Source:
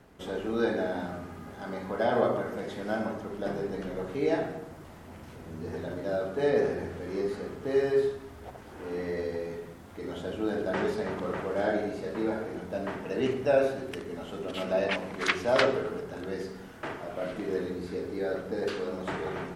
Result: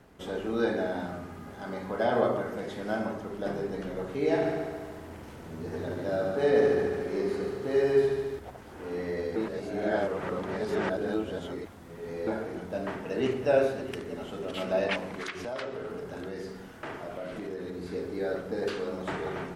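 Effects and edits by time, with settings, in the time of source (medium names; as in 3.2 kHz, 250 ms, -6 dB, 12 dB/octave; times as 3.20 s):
4.17–8.39 s: multi-head delay 72 ms, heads first and second, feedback 64%, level -9.5 dB
9.36–12.27 s: reverse
12.91–13.49 s: echo throw 320 ms, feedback 65%, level -12 dB
15.19–17.86 s: compression 5:1, threshold -33 dBFS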